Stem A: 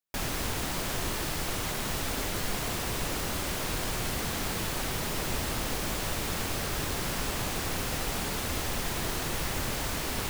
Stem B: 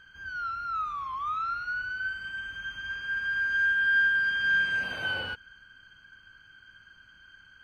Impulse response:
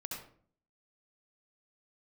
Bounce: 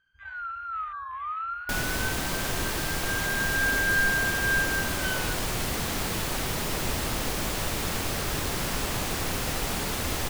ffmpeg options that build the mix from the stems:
-filter_complex "[0:a]adelay=1550,volume=2.5dB[link_01];[1:a]afwtdn=0.0141,volume=-1.5dB[link_02];[link_01][link_02]amix=inputs=2:normalize=0"

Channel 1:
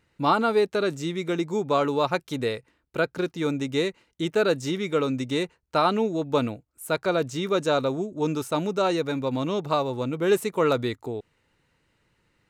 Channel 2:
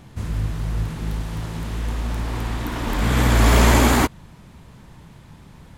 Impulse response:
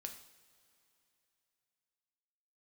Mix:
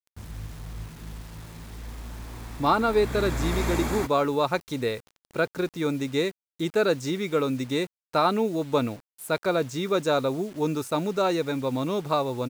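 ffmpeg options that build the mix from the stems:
-filter_complex "[0:a]adelay=2400,volume=-0.5dB[link_01];[1:a]volume=-13.5dB[link_02];[link_01][link_02]amix=inputs=2:normalize=0,bandreject=frequency=3000:width=7.9,acrusher=bits=7:mix=0:aa=0.000001"

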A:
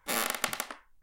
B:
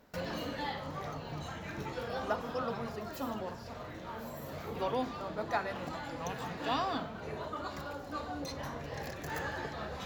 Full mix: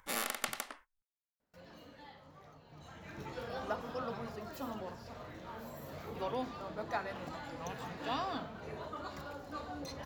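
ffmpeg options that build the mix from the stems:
ffmpeg -i stem1.wav -i stem2.wav -filter_complex "[0:a]agate=range=-24dB:threshold=-52dB:ratio=16:detection=peak,acompressor=mode=upward:threshold=-39dB:ratio=2.5,volume=-6dB[link_01];[1:a]dynaudnorm=framelen=110:gausssize=3:maxgain=5.5dB,adelay=1400,volume=-9.5dB,afade=type=in:start_time=2.69:duration=0.69:silence=0.223872[link_02];[link_01][link_02]amix=inputs=2:normalize=0" out.wav

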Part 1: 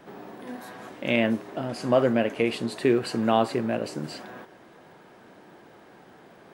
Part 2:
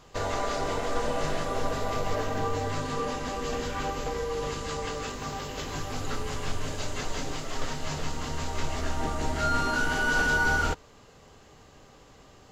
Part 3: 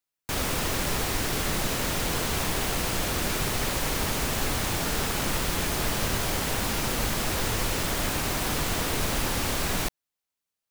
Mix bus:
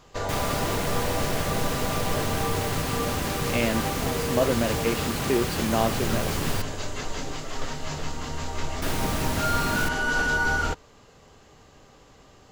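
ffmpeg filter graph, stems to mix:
ffmpeg -i stem1.wav -i stem2.wav -i stem3.wav -filter_complex "[0:a]adelay=2450,volume=-3dB[link_01];[1:a]volume=0.5dB[link_02];[2:a]highpass=77,bass=frequency=250:gain=7,treble=frequency=4000:gain=-1,volume=-3dB,asplit=3[link_03][link_04][link_05];[link_03]atrim=end=6.62,asetpts=PTS-STARTPTS,afade=type=out:start_time=6.616:duration=0.004:curve=hsin[link_06];[link_04]atrim=start=6.62:end=8.82,asetpts=PTS-STARTPTS,volume=0[link_07];[link_05]atrim=start=8.82,asetpts=PTS-STARTPTS,afade=type=in:duration=0.004:curve=hsin[link_08];[link_06][link_07][link_08]concat=n=3:v=0:a=1[link_09];[link_01][link_02][link_09]amix=inputs=3:normalize=0" out.wav

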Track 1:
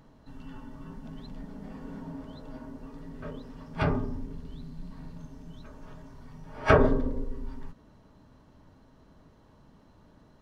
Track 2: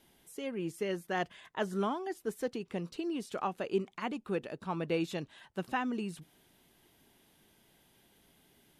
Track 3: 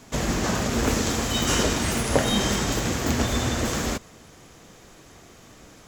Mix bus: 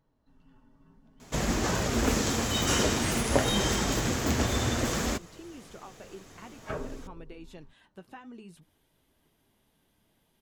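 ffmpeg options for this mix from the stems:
ffmpeg -i stem1.wav -i stem2.wav -i stem3.wav -filter_complex "[0:a]volume=-12.5dB[link_01];[1:a]acompressor=threshold=-36dB:ratio=6,adelay=2400,volume=-3dB[link_02];[2:a]adelay=1200,volume=1dB[link_03];[link_01][link_02][link_03]amix=inputs=3:normalize=0,flanger=delay=2:depth=8.8:regen=-59:speed=0.56:shape=sinusoidal" out.wav

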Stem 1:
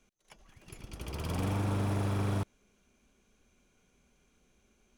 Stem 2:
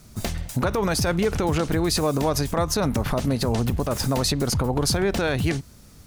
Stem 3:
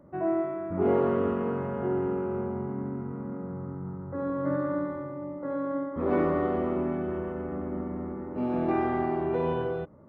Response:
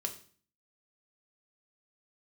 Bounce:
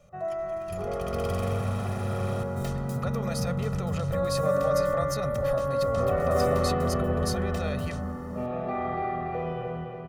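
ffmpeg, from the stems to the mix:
-filter_complex "[0:a]volume=2dB,asplit=2[link_01][link_02];[link_02]volume=-20dB[link_03];[1:a]adelay=2400,volume=-13dB[link_04];[2:a]dynaudnorm=framelen=380:gausssize=13:maxgain=11.5dB,volume=-4.5dB,asplit=2[link_05][link_06];[link_06]volume=-7dB[link_07];[link_01][link_05]amix=inputs=2:normalize=0,equalizer=frequency=280:width=1.6:gain=-8.5,acompressor=threshold=-30dB:ratio=3,volume=0dB[link_08];[link_03][link_07]amix=inputs=2:normalize=0,aecho=0:1:287|574|861|1148|1435|1722|2009|2296|2583:1|0.59|0.348|0.205|0.121|0.0715|0.0422|0.0249|0.0147[link_09];[link_04][link_08][link_09]amix=inputs=3:normalize=0,aecho=1:1:1.6:0.84"

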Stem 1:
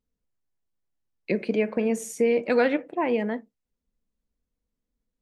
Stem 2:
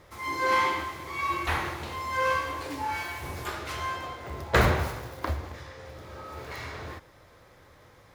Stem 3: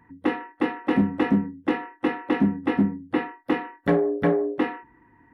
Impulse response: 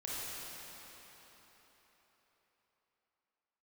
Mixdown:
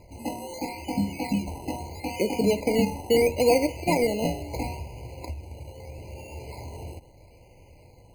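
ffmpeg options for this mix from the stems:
-filter_complex "[0:a]bass=frequency=250:gain=-9,treble=frequency=4000:gain=2,adelay=900,volume=2.5dB[link_01];[1:a]lowshelf=frequency=92:gain=9.5,acompressor=threshold=-35dB:ratio=4,volume=1.5dB[link_02];[2:a]aecho=1:1:1.3:0.94,volume=-7dB[link_03];[link_01][link_02][link_03]amix=inputs=3:normalize=0,highshelf=frequency=3800:gain=-9,acrusher=samples=15:mix=1:aa=0.000001:lfo=1:lforange=9:lforate=0.76,afftfilt=real='re*eq(mod(floor(b*sr/1024/1000),2),0)':imag='im*eq(mod(floor(b*sr/1024/1000),2),0)':win_size=1024:overlap=0.75"

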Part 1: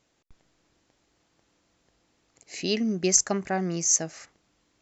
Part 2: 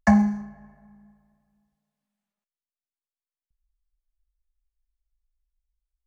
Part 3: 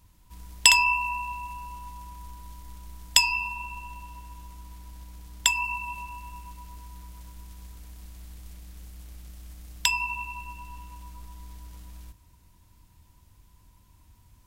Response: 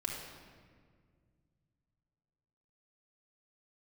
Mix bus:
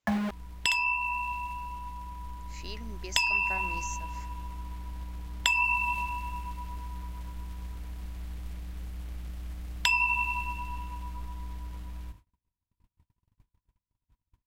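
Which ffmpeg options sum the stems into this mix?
-filter_complex "[0:a]aemphasis=mode=production:type=75kf,acompressor=threshold=-21dB:ratio=6,lowshelf=frequency=420:gain=-11.5,volume=-13.5dB[link_01];[1:a]acrusher=bits=3:mix=0:aa=0.000001,volume=-8dB[link_02];[2:a]adynamicequalizer=threshold=0.0112:dfrequency=2200:dqfactor=0.7:tfrequency=2200:tqfactor=0.7:attack=5:release=100:ratio=0.375:range=3.5:mode=boostabove:tftype=highshelf,volume=0.5dB[link_03];[link_02][link_03]amix=inputs=2:normalize=0,agate=range=-38dB:threshold=-51dB:ratio=16:detection=peak,acompressor=threshold=-28dB:ratio=2,volume=0dB[link_04];[link_01][link_04]amix=inputs=2:normalize=0,bass=frequency=250:gain=0,treble=frequency=4000:gain=-12,dynaudnorm=framelen=510:gausssize=11:maxgain=5.5dB"

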